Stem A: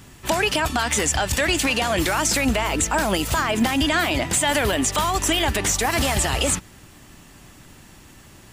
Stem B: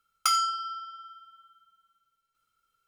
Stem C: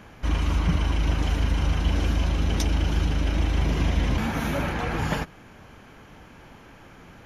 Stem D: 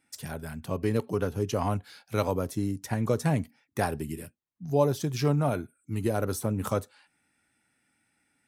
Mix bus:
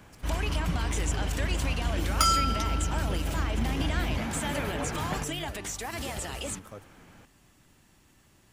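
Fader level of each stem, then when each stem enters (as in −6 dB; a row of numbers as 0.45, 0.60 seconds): −14.5, +0.5, −6.5, −16.5 decibels; 0.00, 1.95, 0.00, 0.00 seconds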